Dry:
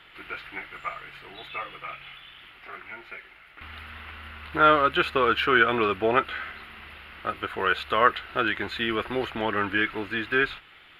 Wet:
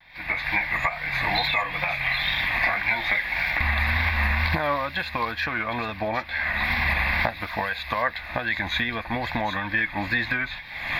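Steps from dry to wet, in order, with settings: recorder AGC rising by 55 dB/s; wow and flutter 110 cents; static phaser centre 2 kHz, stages 8; on a send: feedback echo behind a high-pass 765 ms, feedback 33%, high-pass 3.6 kHz, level -6 dB

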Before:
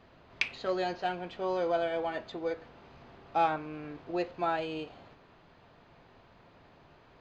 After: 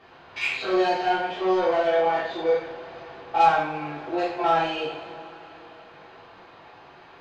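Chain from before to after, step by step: spectrogram pixelated in time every 50 ms; overdrive pedal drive 16 dB, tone 3.4 kHz, clips at -17 dBFS; two-slope reverb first 0.57 s, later 4.8 s, from -22 dB, DRR -8.5 dB; trim -4.5 dB

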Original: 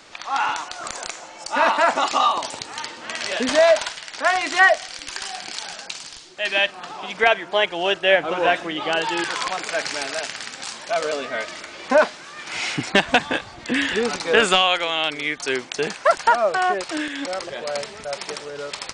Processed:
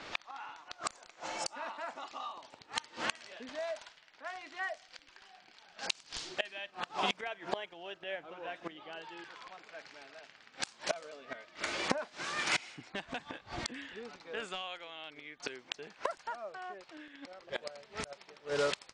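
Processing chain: inverted gate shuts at -19 dBFS, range -25 dB; level-controlled noise filter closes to 2.9 kHz, open at -33.5 dBFS; trim +1 dB

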